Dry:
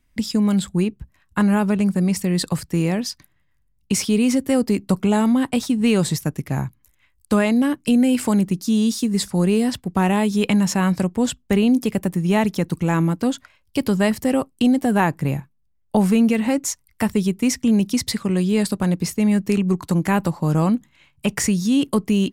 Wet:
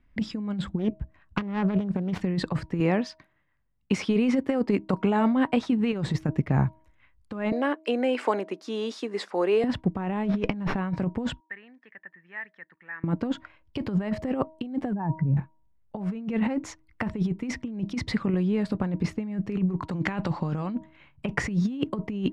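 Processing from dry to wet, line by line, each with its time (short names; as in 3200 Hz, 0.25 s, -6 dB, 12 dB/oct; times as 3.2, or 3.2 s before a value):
0.79–2.21 self-modulated delay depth 0.36 ms
2.8–5.93 low shelf 200 Hz -12 dB
7.52–9.64 HPF 390 Hz 24 dB/oct
10.25–10.79 running maximum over 5 samples
11.4–13.04 band-pass 1800 Hz, Q 14
14.93–15.37 spectral contrast raised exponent 2.1
18.34–18.75 compressor 4:1, threshold -25 dBFS
19.91–20.75 bell 4300 Hz +11 dB 2.2 oct
whole clip: LPF 2100 Hz 12 dB/oct; de-hum 317.1 Hz, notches 3; negative-ratio compressor -22 dBFS, ratio -0.5; gain -2 dB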